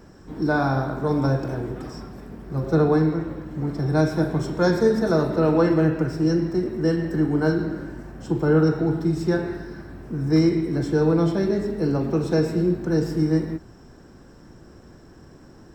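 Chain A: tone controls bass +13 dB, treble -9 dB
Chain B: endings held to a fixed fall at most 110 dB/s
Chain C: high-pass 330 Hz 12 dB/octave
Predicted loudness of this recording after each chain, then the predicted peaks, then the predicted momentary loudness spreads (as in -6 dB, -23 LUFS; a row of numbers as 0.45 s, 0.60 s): -15.5 LUFS, -23.0 LUFS, -25.5 LUFS; -1.5 dBFS, -7.0 dBFS, -9.5 dBFS; 12 LU, 13 LU, 16 LU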